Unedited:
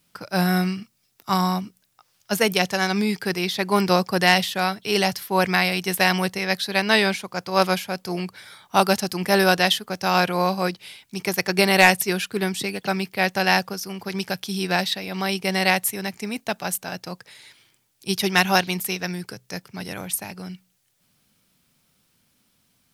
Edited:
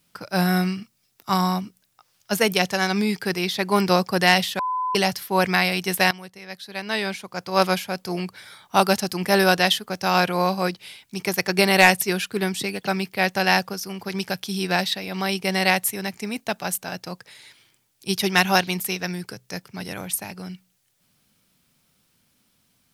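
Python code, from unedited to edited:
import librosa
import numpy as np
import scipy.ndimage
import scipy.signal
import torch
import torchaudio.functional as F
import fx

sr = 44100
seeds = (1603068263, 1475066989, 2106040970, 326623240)

y = fx.edit(x, sr, fx.bleep(start_s=4.59, length_s=0.36, hz=1010.0, db=-22.0),
    fx.fade_in_from(start_s=6.11, length_s=1.48, curve='qua', floor_db=-17.0), tone=tone)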